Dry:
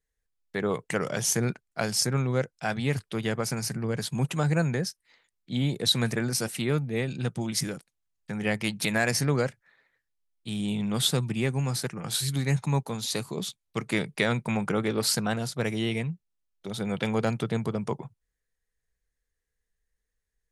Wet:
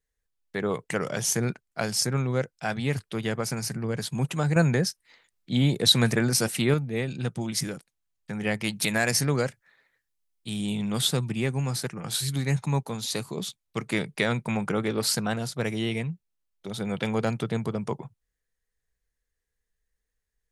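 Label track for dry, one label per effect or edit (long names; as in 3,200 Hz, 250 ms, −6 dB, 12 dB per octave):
4.560000	6.740000	clip gain +4.5 dB
8.680000	11.010000	high-shelf EQ 4,600 Hz +5.5 dB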